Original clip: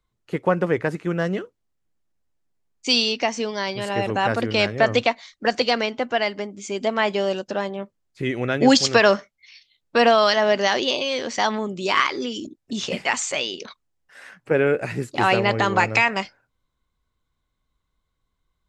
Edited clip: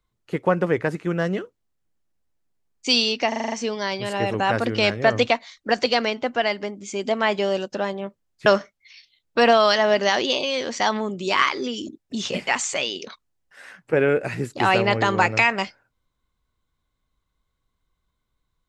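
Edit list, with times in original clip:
0:03.28: stutter 0.04 s, 7 plays
0:08.22–0:09.04: remove

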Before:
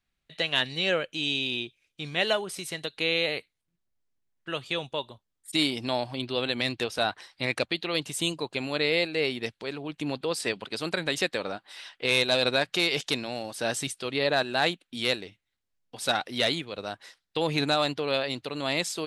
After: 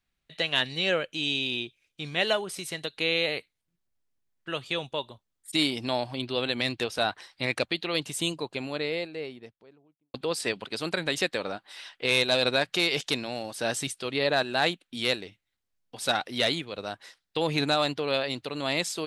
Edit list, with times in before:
0:08.06–0:10.14: fade out and dull

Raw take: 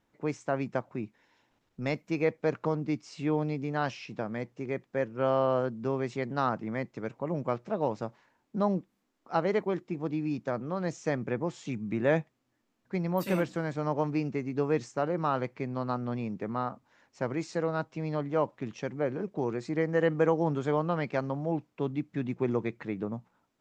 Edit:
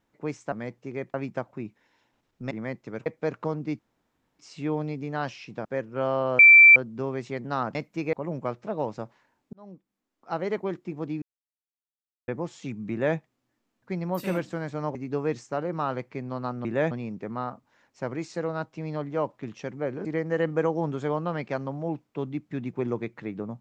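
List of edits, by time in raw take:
0:01.89–0:02.27: swap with 0:06.61–0:07.16
0:03.00: splice in room tone 0.60 s
0:04.26–0:04.88: move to 0:00.52
0:05.62: insert tone 2,340 Hz −8.5 dBFS 0.37 s
0:08.56–0:09.66: fade in
0:10.25–0:11.31: silence
0:11.94–0:12.20: duplicate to 0:16.10
0:13.98–0:14.40: remove
0:19.24–0:19.68: remove

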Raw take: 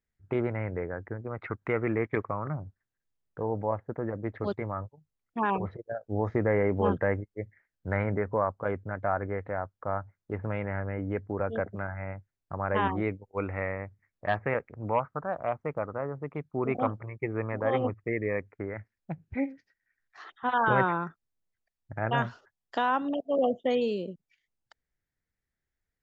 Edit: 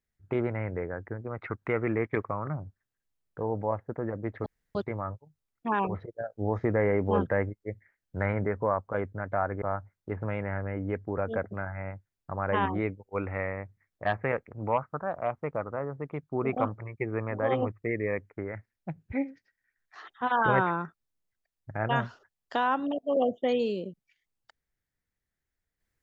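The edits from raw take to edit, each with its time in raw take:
0:04.46: splice in room tone 0.29 s
0:09.33–0:09.84: remove

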